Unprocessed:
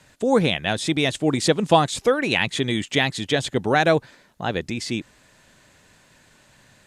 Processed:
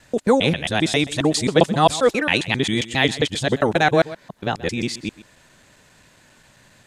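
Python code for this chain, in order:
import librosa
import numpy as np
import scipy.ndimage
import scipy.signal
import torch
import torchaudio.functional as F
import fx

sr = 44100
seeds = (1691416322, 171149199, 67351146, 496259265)

y = fx.local_reverse(x, sr, ms=134.0)
y = y + 10.0 ** (-17.5 / 20.0) * np.pad(y, (int(128 * sr / 1000.0), 0))[:len(y)]
y = F.gain(torch.from_numpy(y), 2.0).numpy()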